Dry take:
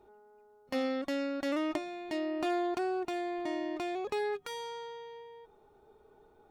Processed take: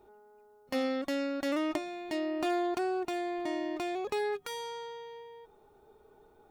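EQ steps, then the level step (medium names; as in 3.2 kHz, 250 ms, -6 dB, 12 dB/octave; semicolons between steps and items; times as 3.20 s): treble shelf 8.9 kHz +7 dB; +1.0 dB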